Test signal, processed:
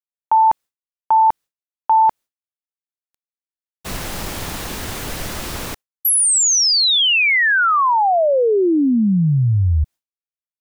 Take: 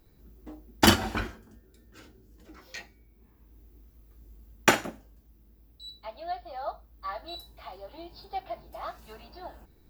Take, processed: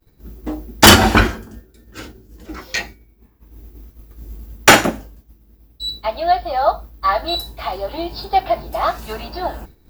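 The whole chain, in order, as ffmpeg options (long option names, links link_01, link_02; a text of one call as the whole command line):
ffmpeg -i in.wav -af "agate=range=-33dB:threshold=-49dB:ratio=3:detection=peak,apsyclip=20dB,volume=-1dB" out.wav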